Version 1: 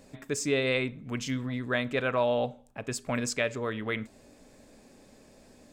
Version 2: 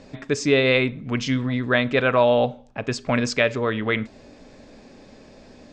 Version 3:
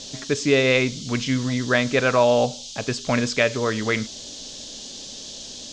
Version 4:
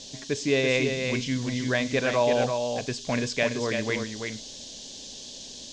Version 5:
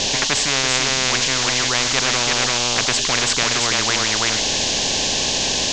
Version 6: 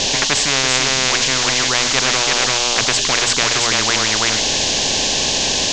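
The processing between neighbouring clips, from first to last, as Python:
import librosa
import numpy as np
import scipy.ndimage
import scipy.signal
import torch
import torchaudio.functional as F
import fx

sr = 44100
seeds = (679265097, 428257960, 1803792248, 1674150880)

y1 = scipy.signal.sosfilt(scipy.signal.butter(4, 5700.0, 'lowpass', fs=sr, output='sos'), x)
y1 = y1 * librosa.db_to_amplitude(9.0)
y2 = fx.dmg_noise_band(y1, sr, seeds[0], low_hz=3100.0, high_hz=6900.0, level_db=-38.0)
y3 = fx.peak_eq(y2, sr, hz=1300.0, db=-12.0, octaves=0.2)
y3 = y3 + 10.0 ** (-5.5 / 20.0) * np.pad(y3, (int(336 * sr / 1000.0), 0))[:len(y3)]
y3 = y3 * librosa.db_to_amplitude(-5.5)
y4 = scipy.signal.sosfilt(scipy.signal.butter(2, 4200.0, 'lowpass', fs=sr, output='sos'), y3)
y4 = fx.spectral_comp(y4, sr, ratio=10.0)
y4 = y4 * librosa.db_to_amplitude(8.5)
y5 = fx.hum_notches(y4, sr, base_hz=60, count=4)
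y5 = y5 * librosa.db_to_amplitude(2.5)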